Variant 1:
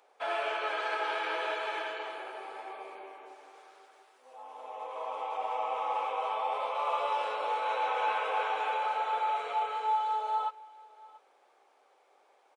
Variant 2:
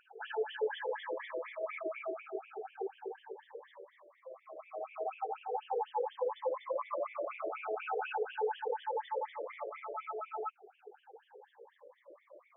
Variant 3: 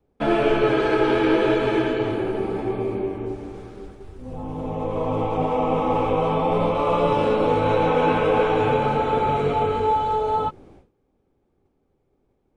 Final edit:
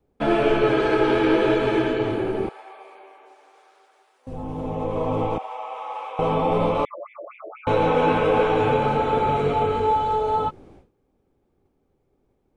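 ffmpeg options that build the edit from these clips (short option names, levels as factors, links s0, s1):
-filter_complex "[0:a]asplit=2[s0][s1];[2:a]asplit=4[s2][s3][s4][s5];[s2]atrim=end=2.492[s6];[s0]atrim=start=2.488:end=4.272[s7];[s3]atrim=start=4.268:end=5.382[s8];[s1]atrim=start=5.378:end=6.192[s9];[s4]atrim=start=6.188:end=6.852[s10];[1:a]atrim=start=6.848:end=7.672[s11];[s5]atrim=start=7.668[s12];[s6][s7]acrossfade=d=0.004:c1=hsin:c2=hsin[s13];[s13][s8]acrossfade=d=0.004:c1=hsin:c2=hsin[s14];[s14][s9]acrossfade=d=0.004:c1=hsin:c2=hsin[s15];[s15][s10]acrossfade=d=0.004:c1=hsin:c2=hsin[s16];[s16][s11]acrossfade=d=0.004:c1=hsin:c2=hsin[s17];[s17][s12]acrossfade=d=0.004:c1=hsin:c2=hsin"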